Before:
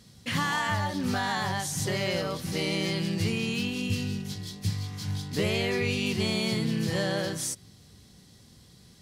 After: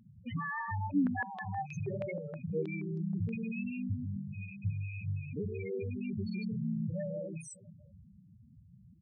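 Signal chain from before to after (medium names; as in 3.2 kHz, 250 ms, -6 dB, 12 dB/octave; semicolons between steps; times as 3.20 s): rattle on loud lows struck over -39 dBFS, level -20 dBFS; feedback delay 318 ms, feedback 52%, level -23 dB; compression 1.5:1, threshold -36 dBFS, peak gain reduction 5.5 dB; loudest bins only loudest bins 4; 0.91–3.34 s: step-sequenced low-pass 6.3 Hz 330–5200 Hz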